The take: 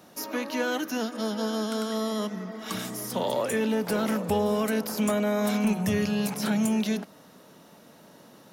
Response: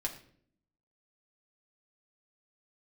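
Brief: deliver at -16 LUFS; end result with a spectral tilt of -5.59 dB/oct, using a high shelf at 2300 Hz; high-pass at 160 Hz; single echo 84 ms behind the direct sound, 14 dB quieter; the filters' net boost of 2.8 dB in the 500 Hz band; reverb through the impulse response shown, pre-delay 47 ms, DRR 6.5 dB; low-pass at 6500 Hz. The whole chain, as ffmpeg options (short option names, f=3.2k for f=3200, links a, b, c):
-filter_complex "[0:a]highpass=160,lowpass=6.5k,equalizer=f=500:t=o:g=4,highshelf=f=2.3k:g=-8.5,aecho=1:1:84:0.2,asplit=2[a][b];[1:a]atrim=start_sample=2205,adelay=47[c];[b][c]afir=irnorm=-1:irlink=0,volume=-8.5dB[d];[a][d]amix=inputs=2:normalize=0,volume=11dB"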